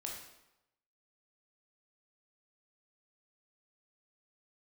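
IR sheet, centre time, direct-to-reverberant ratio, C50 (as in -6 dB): 45 ms, -1.0 dB, 3.0 dB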